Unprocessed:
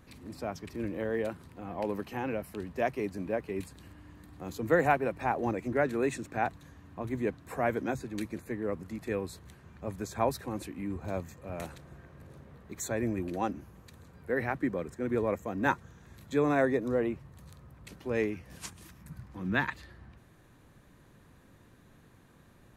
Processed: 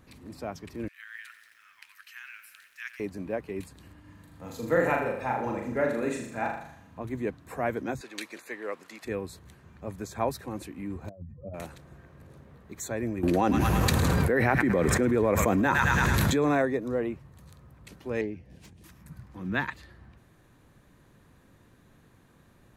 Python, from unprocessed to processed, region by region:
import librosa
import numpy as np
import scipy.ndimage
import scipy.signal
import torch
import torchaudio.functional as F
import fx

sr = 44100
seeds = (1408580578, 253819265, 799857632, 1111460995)

y = fx.chain(x, sr, fx.steep_highpass(hz=1400.0, slope=48),
    fx.echo_crushed(ms=90, feedback_pct=80, bits=10, wet_db=-12.0), at=(0.88, 3.0))
y = fx.chain(y, sr, fx.low_shelf(hz=140.0, db=-3.5),
    fx.notch_comb(f0_hz=370.0),
    fx.room_flutter(wall_m=6.8, rt60_s=0.66), at=(4.0, 6.99))
y = fx.chain(y, sr, fx.highpass(hz=460.0, slope=12),
    fx.peak_eq(hz=3500.0, db=9.5, octaves=2.9), at=(8.01, 9.05))
y = fx.chain(y, sr, fx.spec_expand(power=2.4),
    fx.lowpass(hz=1400.0, slope=12),
    fx.over_compress(threshold_db=-40.0, ratio=-0.5), at=(11.09, 11.54))
y = fx.chain(y, sr, fx.echo_wet_highpass(ms=107, feedback_pct=55, hz=1400.0, wet_db=-12),
    fx.env_flatten(amount_pct=100), at=(13.23, 16.62))
y = fx.chain(y, sr, fx.self_delay(depth_ms=0.12),
    fx.lowpass(hz=1600.0, slope=6),
    fx.peak_eq(hz=1200.0, db=-13.5, octaves=0.98), at=(18.21, 18.84))